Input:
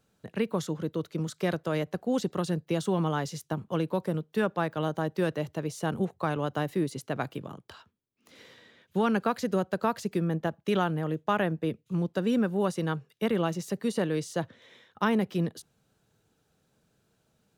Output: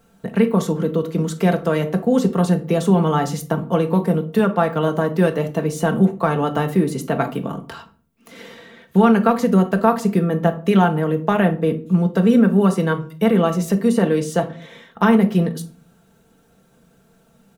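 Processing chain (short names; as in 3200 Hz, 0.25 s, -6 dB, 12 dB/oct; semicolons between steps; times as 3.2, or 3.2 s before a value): bell 4500 Hz -6.5 dB 1.6 oct; comb 4.4 ms, depth 56%; in parallel at +1.5 dB: compressor, threshold -35 dBFS, peak gain reduction 16.5 dB; on the sum: shoebox room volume 350 m³, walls furnished, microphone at 0.81 m; gain +6.5 dB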